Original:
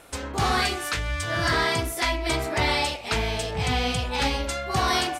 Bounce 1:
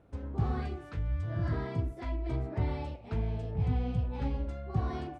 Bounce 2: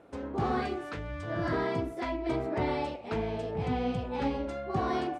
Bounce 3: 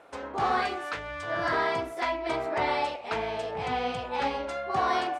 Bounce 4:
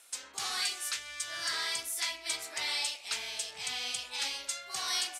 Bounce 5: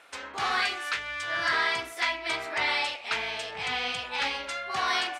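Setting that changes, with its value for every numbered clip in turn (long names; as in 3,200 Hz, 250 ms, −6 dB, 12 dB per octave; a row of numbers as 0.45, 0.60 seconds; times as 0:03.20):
resonant band-pass, frequency: 100, 290, 730, 7,900, 2,000 Hertz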